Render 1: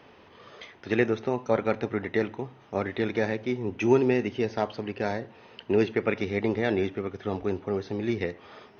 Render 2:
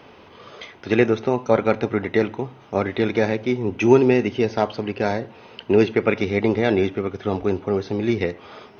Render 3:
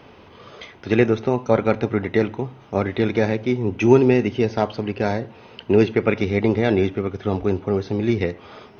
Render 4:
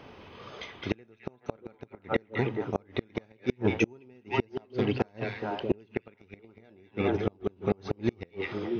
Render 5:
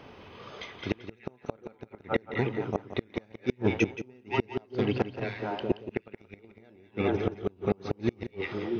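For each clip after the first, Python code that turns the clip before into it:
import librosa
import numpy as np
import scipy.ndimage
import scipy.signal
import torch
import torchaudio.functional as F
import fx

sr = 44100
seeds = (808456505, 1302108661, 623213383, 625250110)

y1 = fx.notch(x, sr, hz=1800.0, q=12.0)
y1 = y1 * librosa.db_to_amplitude(7.0)
y2 = fx.low_shelf(y1, sr, hz=170.0, db=7.0)
y2 = y2 * librosa.db_to_amplitude(-1.0)
y3 = fx.echo_stepped(y2, sr, ms=211, hz=2600.0, octaves=-1.4, feedback_pct=70, wet_db=-0.5)
y3 = fx.gate_flip(y3, sr, shuts_db=-9.0, range_db=-35)
y3 = y3 * librosa.db_to_amplitude(-3.0)
y4 = y3 + 10.0 ** (-12.5 / 20.0) * np.pad(y3, (int(175 * sr / 1000.0), 0))[:len(y3)]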